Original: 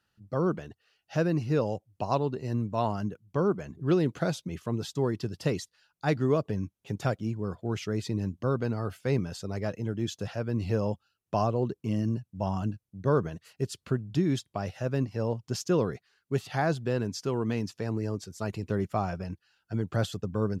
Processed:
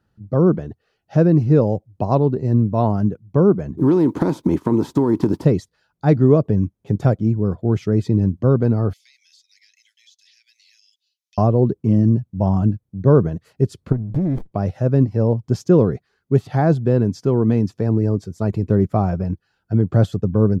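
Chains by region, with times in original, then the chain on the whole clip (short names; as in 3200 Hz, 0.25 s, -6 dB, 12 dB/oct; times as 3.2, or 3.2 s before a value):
3.77–5.43 spectral contrast lowered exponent 0.61 + small resonant body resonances 300/930 Hz, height 16 dB, ringing for 20 ms + compressor 10:1, threshold -24 dBFS
8.93–11.38 steep high-pass 2000 Hz 72 dB/oct + band shelf 4700 Hz +8.5 dB 1.2 oct + compressor 4:1, threshold -50 dBFS
13.92–14.52 compressor, threshold -29 dBFS + running maximum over 33 samples
whole clip: tilt shelf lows +9 dB; notch 2800 Hz, Q 13; gain +5.5 dB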